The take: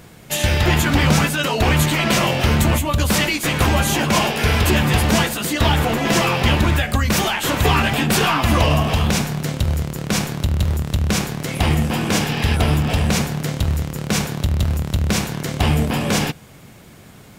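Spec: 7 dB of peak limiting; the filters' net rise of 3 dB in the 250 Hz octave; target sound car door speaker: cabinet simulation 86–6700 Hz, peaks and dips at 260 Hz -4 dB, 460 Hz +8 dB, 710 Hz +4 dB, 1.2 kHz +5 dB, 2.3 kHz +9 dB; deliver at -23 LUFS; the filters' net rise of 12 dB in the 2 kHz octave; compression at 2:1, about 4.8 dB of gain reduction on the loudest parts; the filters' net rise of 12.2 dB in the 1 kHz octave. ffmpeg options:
-af "equalizer=f=250:t=o:g=5,equalizer=f=1000:t=o:g=9,equalizer=f=2000:t=o:g=6.5,acompressor=threshold=0.178:ratio=2,alimiter=limit=0.355:level=0:latency=1,highpass=86,equalizer=f=260:t=q:w=4:g=-4,equalizer=f=460:t=q:w=4:g=8,equalizer=f=710:t=q:w=4:g=4,equalizer=f=1200:t=q:w=4:g=5,equalizer=f=2300:t=q:w=4:g=9,lowpass=f=6700:w=0.5412,lowpass=f=6700:w=1.3066,volume=0.447"

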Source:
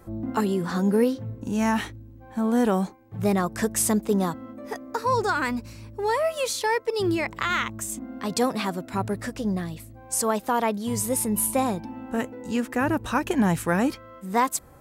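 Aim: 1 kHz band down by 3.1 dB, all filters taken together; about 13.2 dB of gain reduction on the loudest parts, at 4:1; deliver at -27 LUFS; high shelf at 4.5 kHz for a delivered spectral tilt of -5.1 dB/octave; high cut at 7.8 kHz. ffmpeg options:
-af "lowpass=7800,equalizer=f=1000:t=o:g=-3.5,highshelf=f=4500:g=-6,acompressor=threshold=0.02:ratio=4,volume=3.16"

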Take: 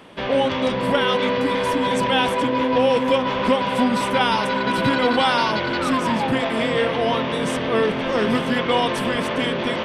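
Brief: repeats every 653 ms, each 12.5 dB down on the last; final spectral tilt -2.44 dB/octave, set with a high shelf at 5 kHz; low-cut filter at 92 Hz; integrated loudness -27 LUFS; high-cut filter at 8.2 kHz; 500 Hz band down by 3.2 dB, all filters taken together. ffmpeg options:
-af "highpass=92,lowpass=8200,equalizer=f=500:t=o:g=-3.5,highshelf=f=5000:g=3,aecho=1:1:653|1306|1959:0.237|0.0569|0.0137,volume=0.501"

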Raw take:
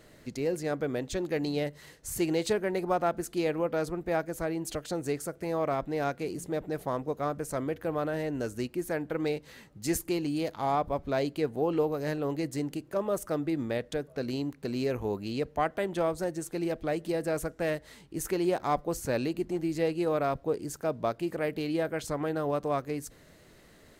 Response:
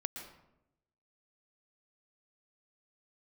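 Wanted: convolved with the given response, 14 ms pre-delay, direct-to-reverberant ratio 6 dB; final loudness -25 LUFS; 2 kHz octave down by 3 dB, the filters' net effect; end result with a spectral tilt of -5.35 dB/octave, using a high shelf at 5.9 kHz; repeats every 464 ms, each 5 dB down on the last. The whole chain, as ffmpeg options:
-filter_complex "[0:a]equalizer=f=2000:t=o:g=-4.5,highshelf=f=5900:g=5.5,aecho=1:1:464|928|1392|1856|2320|2784|3248:0.562|0.315|0.176|0.0988|0.0553|0.031|0.0173,asplit=2[s0][s1];[1:a]atrim=start_sample=2205,adelay=14[s2];[s1][s2]afir=irnorm=-1:irlink=0,volume=0.501[s3];[s0][s3]amix=inputs=2:normalize=0,volume=1.68"

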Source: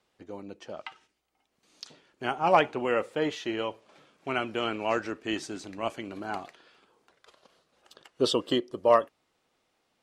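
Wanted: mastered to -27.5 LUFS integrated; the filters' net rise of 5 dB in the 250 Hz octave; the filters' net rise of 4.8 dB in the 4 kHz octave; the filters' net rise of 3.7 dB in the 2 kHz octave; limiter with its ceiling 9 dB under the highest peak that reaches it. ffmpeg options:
-af "equalizer=f=250:t=o:g=6.5,equalizer=f=2000:t=o:g=3.5,equalizer=f=4000:t=o:g=5,volume=1.26,alimiter=limit=0.224:level=0:latency=1"

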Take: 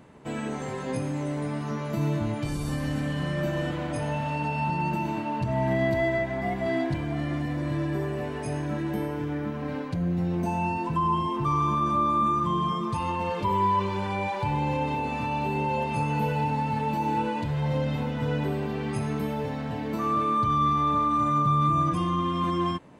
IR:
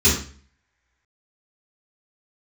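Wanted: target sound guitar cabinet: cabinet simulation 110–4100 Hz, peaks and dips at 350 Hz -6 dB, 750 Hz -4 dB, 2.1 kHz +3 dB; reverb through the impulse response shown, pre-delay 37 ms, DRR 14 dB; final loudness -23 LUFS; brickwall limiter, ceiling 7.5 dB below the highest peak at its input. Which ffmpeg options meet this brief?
-filter_complex "[0:a]alimiter=limit=0.0891:level=0:latency=1,asplit=2[s0][s1];[1:a]atrim=start_sample=2205,adelay=37[s2];[s1][s2]afir=irnorm=-1:irlink=0,volume=0.0237[s3];[s0][s3]amix=inputs=2:normalize=0,highpass=110,equalizer=f=350:t=q:w=4:g=-6,equalizer=f=750:t=q:w=4:g=-4,equalizer=f=2100:t=q:w=4:g=3,lowpass=f=4100:w=0.5412,lowpass=f=4100:w=1.3066,volume=2.11"

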